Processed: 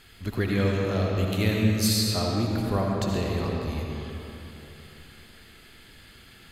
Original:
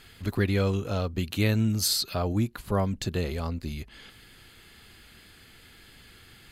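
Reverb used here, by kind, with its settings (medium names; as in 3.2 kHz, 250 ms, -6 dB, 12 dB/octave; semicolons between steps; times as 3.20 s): algorithmic reverb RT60 3.3 s, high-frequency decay 0.65×, pre-delay 35 ms, DRR -1.5 dB; trim -1.5 dB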